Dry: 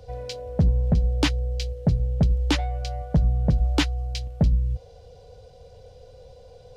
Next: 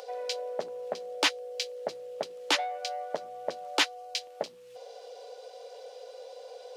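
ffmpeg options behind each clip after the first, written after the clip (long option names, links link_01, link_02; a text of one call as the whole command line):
ffmpeg -i in.wav -filter_complex "[0:a]highpass=frequency=480:width=0.5412,highpass=frequency=480:width=1.3066,asplit=2[link_01][link_02];[link_02]acompressor=mode=upward:threshold=-37dB:ratio=2.5,volume=0dB[link_03];[link_01][link_03]amix=inputs=2:normalize=0,asoftclip=type=tanh:threshold=-8.5dB,volume=-3.5dB" out.wav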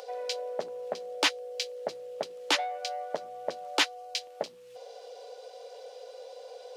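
ffmpeg -i in.wav -af anull out.wav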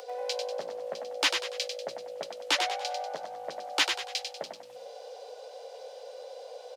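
ffmpeg -i in.wav -filter_complex "[0:a]acrossover=split=130|1000|6500[link_01][link_02][link_03][link_04];[link_02]alimiter=level_in=0.5dB:limit=-24dB:level=0:latency=1:release=120,volume=-0.5dB[link_05];[link_01][link_05][link_03][link_04]amix=inputs=4:normalize=0,asplit=6[link_06][link_07][link_08][link_09][link_10][link_11];[link_07]adelay=96,afreqshift=54,volume=-5.5dB[link_12];[link_08]adelay=192,afreqshift=108,volume=-13.5dB[link_13];[link_09]adelay=288,afreqshift=162,volume=-21.4dB[link_14];[link_10]adelay=384,afreqshift=216,volume=-29.4dB[link_15];[link_11]adelay=480,afreqshift=270,volume=-37.3dB[link_16];[link_06][link_12][link_13][link_14][link_15][link_16]amix=inputs=6:normalize=0" out.wav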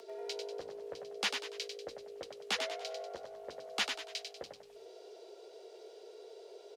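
ffmpeg -i in.wav -af "afreqshift=-86,volume=-8dB" out.wav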